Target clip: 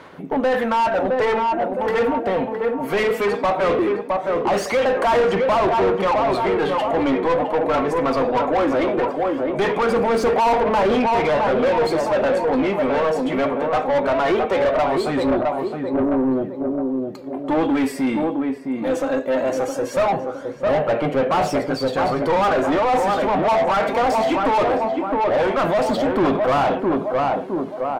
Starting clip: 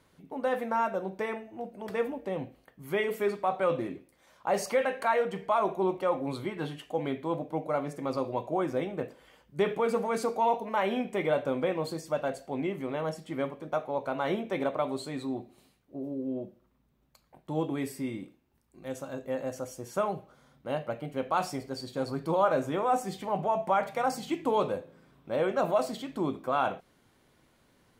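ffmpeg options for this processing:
ffmpeg -i in.wav -filter_complex "[0:a]aphaser=in_gain=1:out_gain=1:delay=4.5:decay=0.51:speed=0.19:type=sinusoidal,asplit=2[link_01][link_02];[link_02]adelay=663,lowpass=frequency=1100:poles=1,volume=-6.5dB,asplit=2[link_03][link_04];[link_04]adelay=663,lowpass=frequency=1100:poles=1,volume=0.45,asplit=2[link_05][link_06];[link_06]adelay=663,lowpass=frequency=1100:poles=1,volume=0.45,asplit=2[link_07][link_08];[link_08]adelay=663,lowpass=frequency=1100:poles=1,volume=0.45,asplit=2[link_09][link_10];[link_10]adelay=663,lowpass=frequency=1100:poles=1,volume=0.45[link_11];[link_01][link_03][link_05][link_07][link_09][link_11]amix=inputs=6:normalize=0,asplit=2[link_12][link_13];[link_13]highpass=frequency=720:poles=1,volume=30dB,asoftclip=type=tanh:threshold=-9.5dB[link_14];[link_12][link_14]amix=inputs=2:normalize=0,lowpass=frequency=1300:poles=1,volume=-6dB" out.wav

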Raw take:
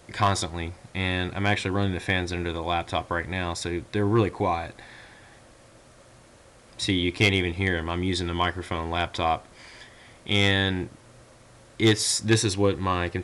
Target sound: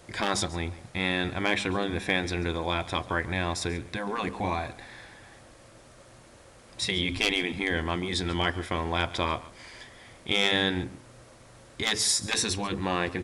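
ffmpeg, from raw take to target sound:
ffmpeg -i in.wav -filter_complex "[0:a]asplit=3[link_01][link_02][link_03];[link_01]afade=type=out:start_time=7.11:duration=0.02[link_04];[link_02]asubboost=boost=7:cutoff=140,afade=type=in:start_time=7.11:duration=0.02,afade=type=out:start_time=7.69:duration=0.02[link_05];[link_03]afade=type=in:start_time=7.69:duration=0.02[link_06];[link_04][link_05][link_06]amix=inputs=3:normalize=0,bandreject=frequency=66.27:width_type=h:width=4,bandreject=frequency=132.54:width_type=h:width=4,bandreject=frequency=198.81:width_type=h:width=4,bandreject=frequency=265.08:width_type=h:width=4,afftfilt=real='re*lt(hypot(re,im),0.316)':imag='im*lt(hypot(re,im),0.316)':win_size=1024:overlap=0.75,asplit=2[link_07][link_08];[link_08]aecho=0:1:139:0.119[link_09];[link_07][link_09]amix=inputs=2:normalize=0" out.wav

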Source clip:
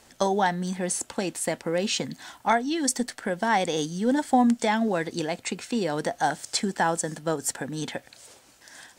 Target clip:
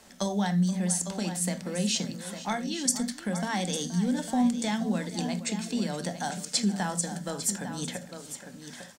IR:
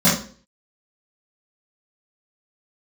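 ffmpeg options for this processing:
-filter_complex "[0:a]aecho=1:1:474|852:0.15|0.251,asplit=2[link_01][link_02];[1:a]atrim=start_sample=2205,afade=type=out:start_time=0.14:duration=0.01,atrim=end_sample=6615[link_03];[link_02][link_03]afir=irnorm=-1:irlink=0,volume=-29dB[link_04];[link_01][link_04]amix=inputs=2:normalize=0,acrossover=split=160|3000[link_05][link_06][link_07];[link_06]acompressor=threshold=-49dB:ratio=1.5[link_08];[link_05][link_08][link_07]amix=inputs=3:normalize=0"

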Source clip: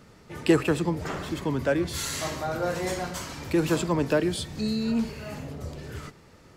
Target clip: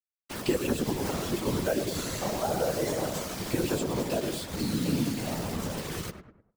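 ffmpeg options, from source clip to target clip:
ffmpeg -i in.wav -filter_complex "[0:a]asettb=1/sr,asplit=3[link_01][link_02][link_03];[link_01]atrim=end=3.834[link_04];[link_02]atrim=start=3.83:end=4.86,asetpts=PTS-STARTPTS,afade=type=in:duration=0.004:curve=qsin,afade=type=out:start_time=1.026:duration=0.004:curve=qsin,acompressor=threshold=-29dB:ratio=4[link_05];[link_03]atrim=start=4.856[link_06];[link_04][link_05]acrossfade=duration=0.004:curve1=hsin:curve2=qsin[link_07];[link_07][link_06]acrossfade=duration=0.004:curve1=qsin:curve2=hsin,acrusher=bits=5:mix=0:aa=0.000001,highpass=140,asplit=2[link_08][link_09];[link_09]adelay=13,volume=-3.5dB[link_10];[link_08][link_10]amix=inputs=2:normalize=0,asplit=2[link_11][link_12];[link_12]adelay=101,lowpass=frequency=1300:poles=1,volume=-7.5dB,asplit=2[link_13][link_14];[link_14]adelay=101,lowpass=frequency=1300:poles=1,volume=0.45,asplit=2[link_15][link_16];[link_16]adelay=101,lowpass=frequency=1300:poles=1,volume=0.45,asplit=2[link_17][link_18];[link_18]adelay=101,lowpass=frequency=1300:poles=1,volume=0.45,asplit=2[link_19][link_20];[link_20]adelay=101,lowpass=frequency=1300:poles=1,volume=0.45[link_21];[link_11][link_13][link_15][link_17][link_19][link_21]amix=inputs=6:normalize=0,afftfilt=real='hypot(re,im)*cos(2*PI*random(0))':imag='hypot(re,im)*sin(2*PI*random(1))':win_size=512:overlap=0.75,acrossover=split=1000|2800[link_22][link_23][link_24];[link_22]acompressor=threshold=-33dB:ratio=4[link_25];[link_23]acompressor=threshold=-55dB:ratio=4[link_26];[link_24]acompressor=threshold=-45dB:ratio=4[link_27];[link_25][link_26][link_27]amix=inputs=3:normalize=0,volume=7.5dB" out.wav

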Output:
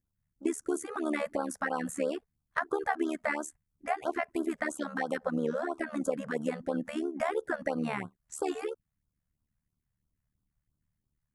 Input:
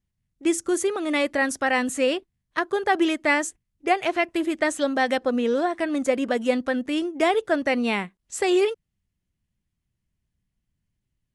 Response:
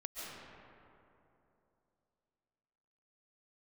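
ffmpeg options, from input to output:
-af "crystalizer=i=2.5:c=0,acompressor=threshold=-24dB:ratio=4,tremolo=f=74:d=0.824,highshelf=frequency=2200:width_type=q:width=1.5:gain=-11.5,afftfilt=real='re*(1-between(b*sr/1024,280*pow(2300/280,0.5+0.5*sin(2*PI*3*pts/sr))/1.41,280*pow(2300/280,0.5+0.5*sin(2*PI*3*pts/sr))*1.41))':imag='im*(1-between(b*sr/1024,280*pow(2300/280,0.5+0.5*sin(2*PI*3*pts/sr))/1.41,280*pow(2300/280,0.5+0.5*sin(2*PI*3*pts/sr))*1.41))':win_size=1024:overlap=0.75"

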